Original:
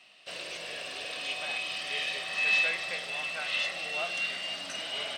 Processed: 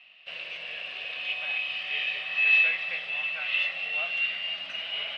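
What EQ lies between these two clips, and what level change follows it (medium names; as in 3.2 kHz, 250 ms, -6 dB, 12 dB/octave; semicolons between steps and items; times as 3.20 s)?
resonant low-pass 2.7 kHz, resonance Q 3.1; peaking EQ 320 Hz -8 dB 0.85 oct; -4.5 dB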